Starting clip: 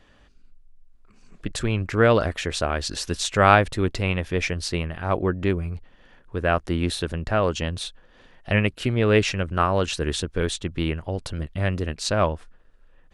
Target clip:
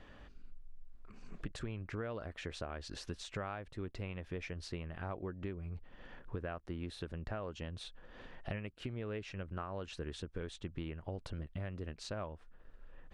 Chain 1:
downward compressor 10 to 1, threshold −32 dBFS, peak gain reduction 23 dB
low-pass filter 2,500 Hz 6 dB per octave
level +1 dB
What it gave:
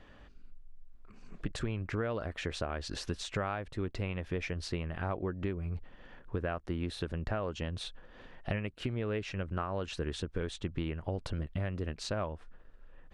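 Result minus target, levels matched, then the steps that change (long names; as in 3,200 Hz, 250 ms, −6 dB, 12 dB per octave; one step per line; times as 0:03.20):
downward compressor: peak gain reduction −6.5 dB
change: downward compressor 10 to 1, threshold −39.5 dBFS, peak gain reduction 29.5 dB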